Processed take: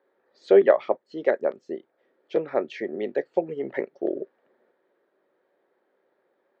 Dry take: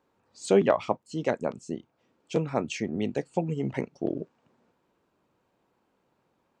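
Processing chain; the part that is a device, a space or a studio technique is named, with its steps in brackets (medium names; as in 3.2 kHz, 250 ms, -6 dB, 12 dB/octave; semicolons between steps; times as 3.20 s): phone earpiece (cabinet simulation 370–3800 Hz, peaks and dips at 380 Hz +9 dB, 560 Hz +8 dB, 1 kHz -5 dB, 1.8 kHz +9 dB, 2.7 kHz -9 dB)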